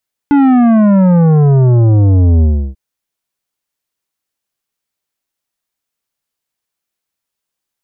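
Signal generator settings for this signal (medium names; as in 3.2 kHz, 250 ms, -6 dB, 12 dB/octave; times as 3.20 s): sub drop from 290 Hz, over 2.44 s, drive 11 dB, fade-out 0.33 s, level -6.5 dB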